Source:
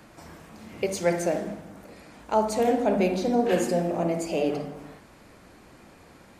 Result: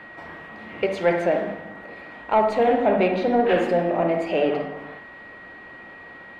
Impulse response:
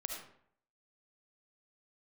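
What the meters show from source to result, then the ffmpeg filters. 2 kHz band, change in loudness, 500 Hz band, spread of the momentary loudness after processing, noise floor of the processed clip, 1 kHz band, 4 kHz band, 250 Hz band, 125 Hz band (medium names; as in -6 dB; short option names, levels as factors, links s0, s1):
+8.0 dB, +4.0 dB, +4.5 dB, 21 LU, -43 dBFS, +6.0 dB, +2.5 dB, +1.5 dB, -0.5 dB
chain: -filter_complex "[0:a]asplit=2[s0][s1];[s1]highpass=f=720:p=1,volume=4.47,asoftclip=type=tanh:threshold=0.316[s2];[s0][s2]amix=inputs=2:normalize=0,lowpass=f=1800:p=1,volume=0.501,aeval=exprs='val(0)+0.00562*sin(2*PI*1900*n/s)':c=same,highshelf=f=4500:t=q:w=1.5:g=-10,asplit=2[s3][s4];[1:a]atrim=start_sample=2205,lowpass=5000[s5];[s4][s5]afir=irnorm=-1:irlink=0,volume=0.335[s6];[s3][s6]amix=inputs=2:normalize=0"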